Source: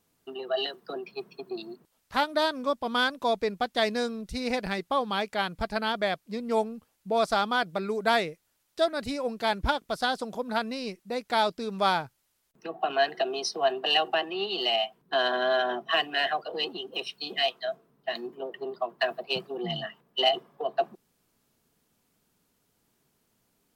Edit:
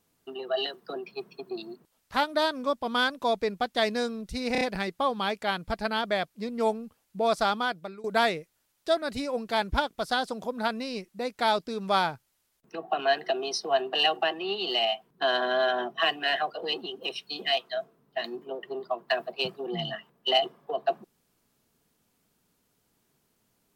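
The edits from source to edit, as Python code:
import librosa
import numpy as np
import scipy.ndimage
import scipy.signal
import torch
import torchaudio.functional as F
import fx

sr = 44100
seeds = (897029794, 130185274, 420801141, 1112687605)

y = fx.edit(x, sr, fx.stutter(start_s=4.52, slice_s=0.03, count=4),
    fx.fade_out_to(start_s=7.43, length_s=0.52, floor_db=-20.0), tone=tone)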